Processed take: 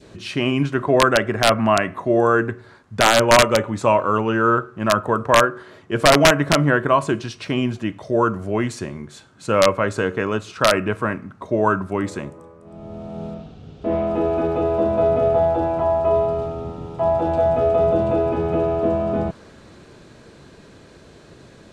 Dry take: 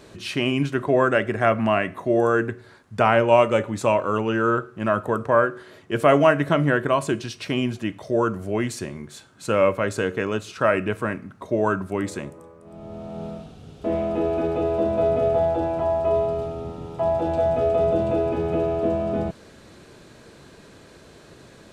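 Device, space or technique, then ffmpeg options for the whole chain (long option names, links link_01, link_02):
overflowing digital effects unit: -filter_complex "[0:a]adynamicequalizer=threshold=0.0178:dfrequency=1100:dqfactor=1.2:tfrequency=1100:tqfactor=1.2:attack=5:release=100:ratio=0.375:range=3:mode=boostabove:tftype=bell,asettb=1/sr,asplit=3[link_01][link_02][link_03];[link_01]atrim=end=13.344[link_04];[link_02]atrim=start=13.34:end=14.07,asetpts=PTS-STARTPTS,afade=type=in:duration=0.004:curve=qsin,afade=type=out:start_time=0.726:duration=0.004:curve=qsin,lowpass=5500[link_05];[link_03]atrim=start=14.066[link_06];[link_04][link_05]acrossfade=duration=0.004:curve1=hsin:curve2=qsin[link_07];[link_07][link_06]acrossfade=duration=0.004:curve1=qsin:curve2=hsin,lowshelf=frequency=390:gain=3.5,aeval=exprs='(mod(1.5*val(0)+1,2)-1)/1.5':channel_layout=same,lowpass=9000"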